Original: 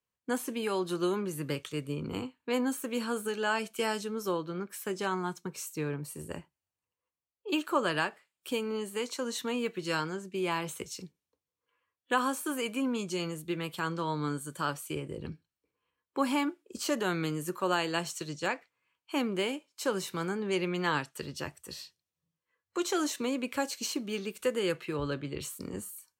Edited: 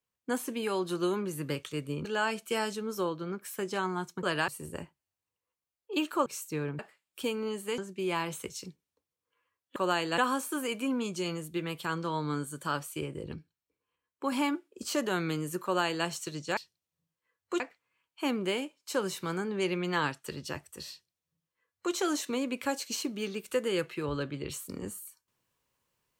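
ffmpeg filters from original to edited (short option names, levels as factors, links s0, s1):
-filter_complex "[0:a]asplit=13[s0][s1][s2][s3][s4][s5][s6][s7][s8][s9][s10][s11][s12];[s0]atrim=end=2.052[s13];[s1]atrim=start=3.328:end=5.512[s14];[s2]atrim=start=7.818:end=8.072[s15];[s3]atrim=start=6.038:end=7.822[s16];[s4]atrim=start=5.508:end=6.042[s17];[s5]atrim=start=8.068:end=9.062[s18];[s6]atrim=start=10.138:end=12.122[s19];[s7]atrim=start=17.578:end=18.002[s20];[s8]atrim=start=12.118:end=15.282[s21];[s9]atrim=start=15.278:end=16.262,asetpts=PTS-STARTPTS,volume=0.708[s22];[s10]atrim=start=16.258:end=18.512[s23];[s11]atrim=start=21.808:end=22.842[s24];[s12]atrim=start=18.508[s25];[s13][s14]acrossfade=d=0.004:c1=hsin:c2=hsin[s26];[s26][s15]acrossfade=d=0.004:c1=hsin:c2=hsin[s27];[s27][s16]acrossfade=d=0.004:c1=hsin:c2=hsin[s28];[s28][s17]acrossfade=d=0.004:c1=hsin:c2=hsin[s29];[s29][s18]acrossfade=d=0.004:c1=hsin:c2=hsin[s30];[s30][s19]acrossfade=d=0.004:c1=hsin:c2=hsin[s31];[s31][s20]acrossfade=d=0.004:c1=hsin:c2=hsin[s32];[s32][s21]acrossfade=d=0.004:c1=hsin:c2=hsin[s33];[s33][s22]acrossfade=d=0.004:c1=hsin:c2=hsin[s34];[s34][s23]acrossfade=d=0.004:c1=hsin:c2=hsin[s35];[s35][s24]acrossfade=d=0.004:c1=hsin:c2=hsin[s36];[s36][s25]acrossfade=d=0.004:c1=hsin:c2=hsin"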